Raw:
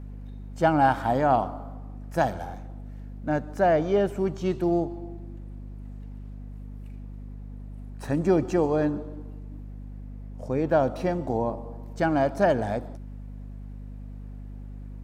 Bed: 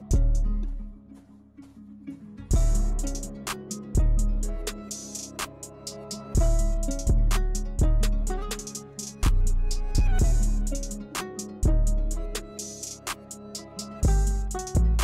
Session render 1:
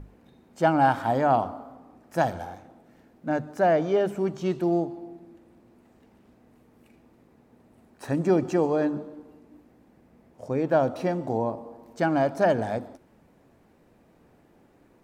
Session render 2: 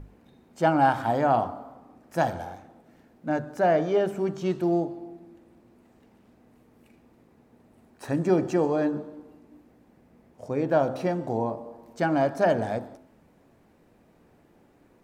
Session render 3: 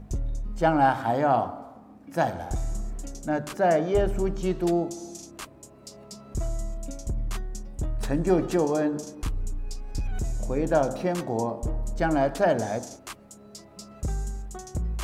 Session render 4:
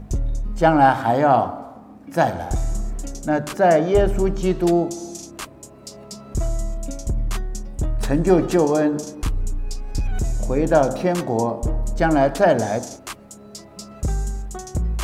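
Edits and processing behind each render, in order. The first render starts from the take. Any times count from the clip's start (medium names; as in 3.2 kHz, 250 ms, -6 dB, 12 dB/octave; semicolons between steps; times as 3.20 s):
hum notches 50/100/150/200/250 Hz
de-hum 65.19 Hz, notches 29
add bed -7.5 dB
trim +6.5 dB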